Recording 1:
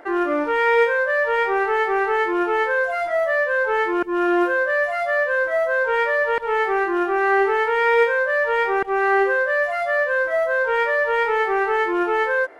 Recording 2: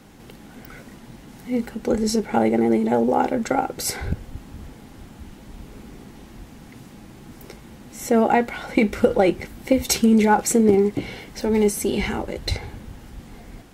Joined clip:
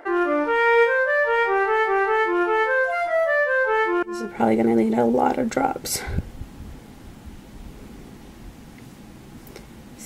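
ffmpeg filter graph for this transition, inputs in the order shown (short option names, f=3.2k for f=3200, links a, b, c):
-filter_complex "[0:a]apad=whole_dur=10.05,atrim=end=10.05,atrim=end=4.45,asetpts=PTS-STARTPTS[a];[1:a]atrim=start=1.91:end=7.99,asetpts=PTS-STARTPTS[b];[a][b]acrossfade=d=0.48:c1=qua:c2=qua"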